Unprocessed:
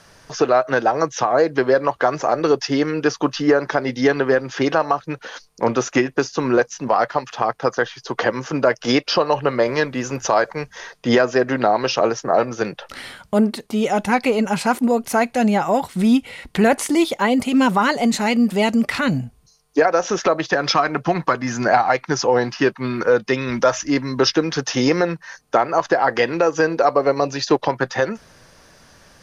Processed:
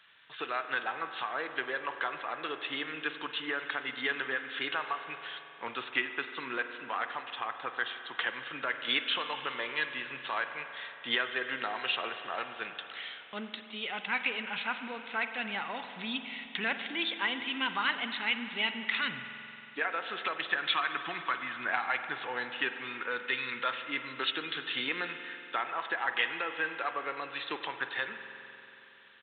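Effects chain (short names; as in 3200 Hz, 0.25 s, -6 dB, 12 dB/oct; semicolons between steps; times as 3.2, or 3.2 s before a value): differentiator; downsampling 8000 Hz; bell 610 Hz -9.5 dB 1.1 oct; spring tank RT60 3.2 s, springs 45 ms, chirp 70 ms, DRR 7.5 dB; gain +5 dB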